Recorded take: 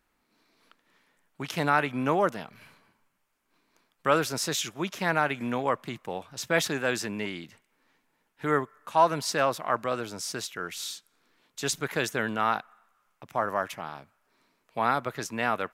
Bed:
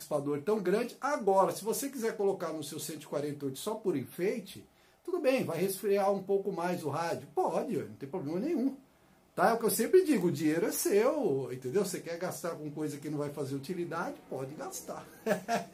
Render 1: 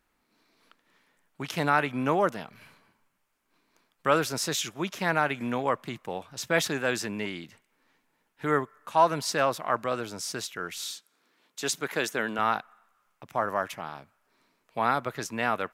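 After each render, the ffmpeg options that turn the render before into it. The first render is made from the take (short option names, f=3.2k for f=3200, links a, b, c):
-filter_complex "[0:a]asettb=1/sr,asplit=3[a][b][c];[a]atrim=end=10.924[d];[b]atrim=start=10.92:end=12.39,asetpts=PTS-STARTPTS,afade=t=in:d=0.004:c=qsin,afade=t=out:st=1.466:d=0.004:c=qsin,highpass=200[e];[c]atrim=start=12.386[f];[d][e]acrossfade=d=0.004:c1=hsin:c2=qsin[g];[g][f]acrossfade=d=0.004:c1=qsin:c2=hsin"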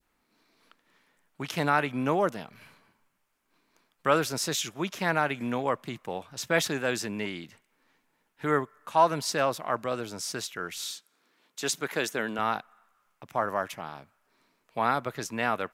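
-af "adynamicequalizer=threshold=0.0126:dfrequency=1400:dqfactor=0.78:tfrequency=1400:tqfactor=0.78:attack=5:release=100:ratio=0.375:range=2:mode=cutabove:tftype=bell"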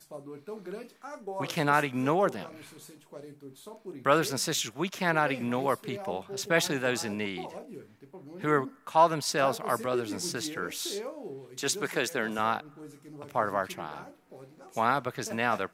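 -filter_complex "[1:a]volume=-10.5dB[a];[0:a][a]amix=inputs=2:normalize=0"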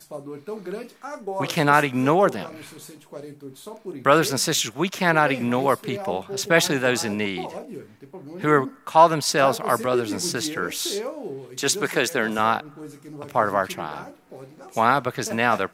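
-af "volume=7.5dB,alimiter=limit=-2dB:level=0:latency=1"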